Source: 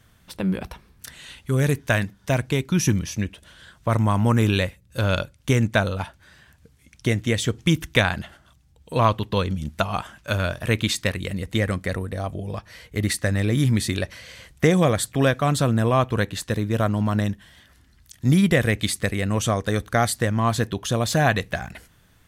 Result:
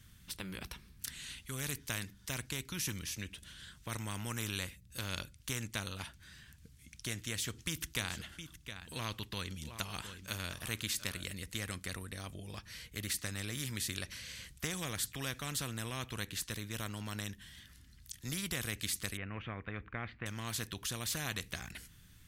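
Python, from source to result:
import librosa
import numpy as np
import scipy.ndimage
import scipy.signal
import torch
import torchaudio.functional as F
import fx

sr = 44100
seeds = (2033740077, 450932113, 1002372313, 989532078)

y = fx.echo_single(x, sr, ms=714, db=-18.0, at=(7.94, 11.29), fade=0.02)
y = fx.ellip_lowpass(y, sr, hz=2400.0, order=4, stop_db=80, at=(19.17, 20.26))
y = fx.tone_stack(y, sr, knobs='6-0-2')
y = fx.spectral_comp(y, sr, ratio=2.0)
y = F.gain(torch.from_numpy(y), 1.5).numpy()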